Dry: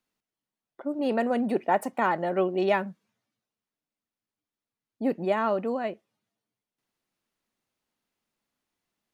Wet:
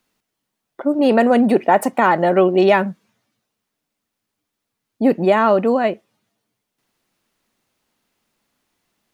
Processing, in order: in parallel at +3 dB: peak limiter -18.5 dBFS, peak gain reduction 8 dB; on the sum: trim +5 dB

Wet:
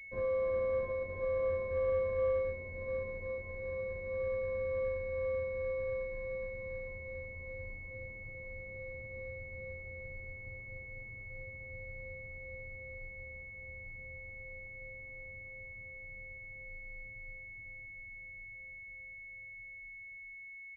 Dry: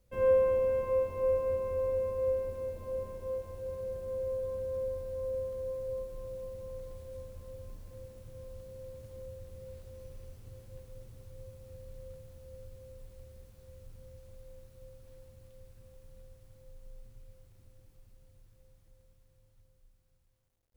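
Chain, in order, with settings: peak limiter -25.5 dBFS, peak gain reduction 8 dB; delay 415 ms -8.5 dB; class-D stage that switches slowly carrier 2.2 kHz; trim -2 dB

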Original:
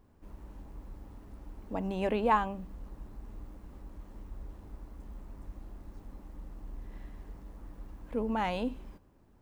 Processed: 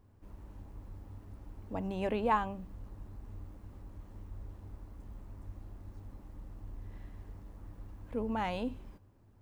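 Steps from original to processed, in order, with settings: peaking EQ 100 Hz +14 dB 0.33 oct; trim -3 dB

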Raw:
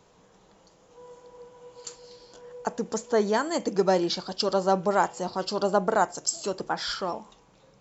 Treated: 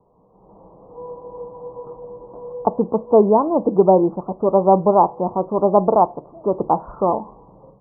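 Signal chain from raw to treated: block-companded coder 5-bit; steep low-pass 1.1 kHz 72 dB/octave; level rider gain up to 14 dB

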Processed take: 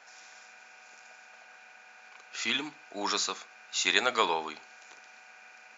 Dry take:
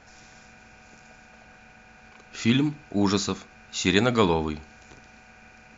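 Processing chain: high-pass 740 Hz 12 dB/octave

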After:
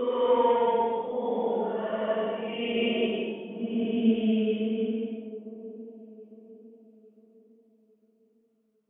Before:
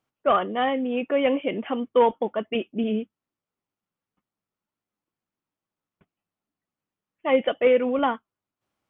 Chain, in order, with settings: compression 3:1, threshold -21 dBFS, peak gain reduction 6.5 dB; Paulstretch 4.4×, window 0.25 s, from 1.90 s; feedback echo behind a band-pass 855 ms, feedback 39%, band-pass 430 Hz, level -12 dB

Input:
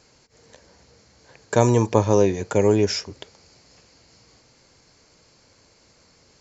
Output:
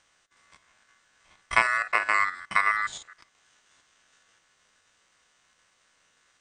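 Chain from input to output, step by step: spectrogram pixelated in time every 50 ms; ring modulator 1.6 kHz; transient shaper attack +7 dB, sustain -5 dB; trim -5.5 dB

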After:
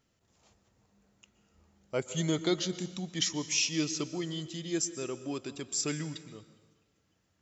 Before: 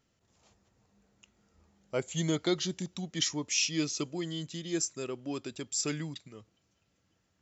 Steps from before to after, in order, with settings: plate-style reverb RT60 1.3 s, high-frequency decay 0.85×, pre-delay 110 ms, DRR 13.5 dB

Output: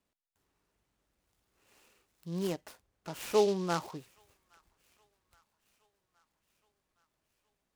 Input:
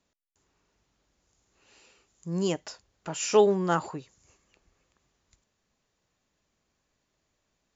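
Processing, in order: 2.47–3.77 s: treble shelf 4.3 kHz -7.5 dB; feedback echo behind a high-pass 819 ms, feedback 64%, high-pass 1.6 kHz, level -24 dB; delay time shaken by noise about 4 kHz, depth 0.045 ms; trim -6 dB

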